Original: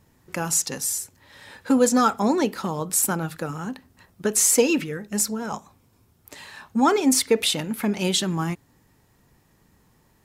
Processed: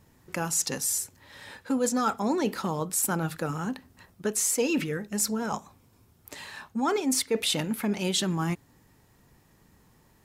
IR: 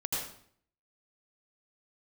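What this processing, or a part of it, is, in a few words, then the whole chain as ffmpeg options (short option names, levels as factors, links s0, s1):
compression on the reversed sound: -af "areverse,acompressor=threshold=0.0631:ratio=4,areverse"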